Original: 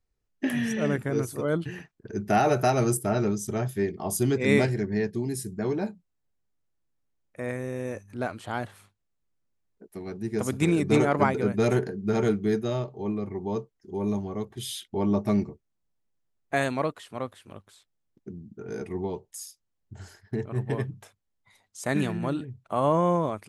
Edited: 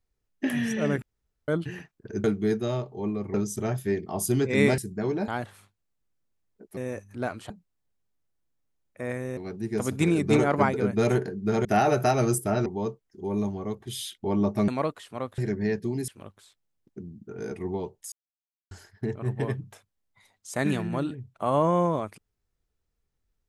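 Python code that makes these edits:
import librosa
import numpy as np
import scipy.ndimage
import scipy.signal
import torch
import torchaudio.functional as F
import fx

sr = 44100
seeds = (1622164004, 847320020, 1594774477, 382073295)

y = fx.edit(x, sr, fx.room_tone_fill(start_s=1.02, length_s=0.46),
    fx.swap(start_s=2.24, length_s=1.01, other_s=12.26, other_length_s=1.1),
    fx.move(start_s=4.69, length_s=0.7, to_s=17.38),
    fx.swap(start_s=5.89, length_s=1.87, other_s=8.49, other_length_s=1.49),
    fx.cut(start_s=15.38, length_s=1.3),
    fx.silence(start_s=19.42, length_s=0.59), tone=tone)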